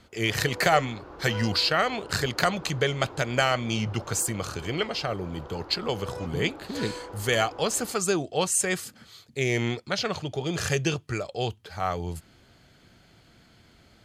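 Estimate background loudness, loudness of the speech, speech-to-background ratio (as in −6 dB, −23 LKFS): −42.5 LKFS, −27.5 LKFS, 15.0 dB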